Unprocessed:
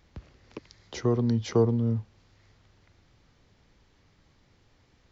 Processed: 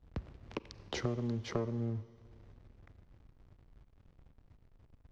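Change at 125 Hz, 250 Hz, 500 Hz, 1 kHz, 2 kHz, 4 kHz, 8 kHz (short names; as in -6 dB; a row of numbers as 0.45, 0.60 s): -10.0 dB, -11.0 dB, -12.0 dB, -7.0 dB, -1.5 dB, -3.0 dB, n/a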